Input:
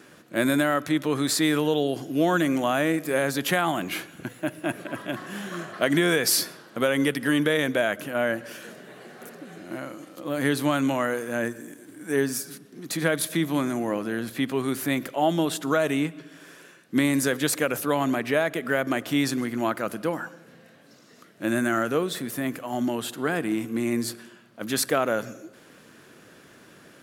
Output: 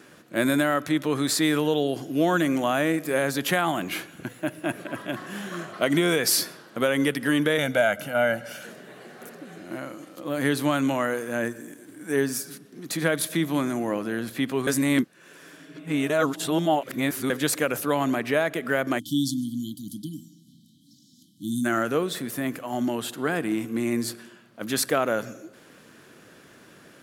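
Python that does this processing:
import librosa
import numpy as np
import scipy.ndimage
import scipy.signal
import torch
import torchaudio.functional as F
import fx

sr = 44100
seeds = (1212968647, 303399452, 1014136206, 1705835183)

y = fx.notch(x, sr, hz=1700.0, q=7.9, at=(5.67, 6.19))
y = fx.comb(y, sr, ms=1.4, depth=0.65, at=(7.58, 8.66))
y = fx.brickwall_bandstop(y, sr, low_hz=320.0, high_hz=3000.0, at=(18.98, 21.64), fade=0.02)
y = fx.edit(y, sr, fx.reverse_span(start_s=14.67, length_s=2.63), tone=tone)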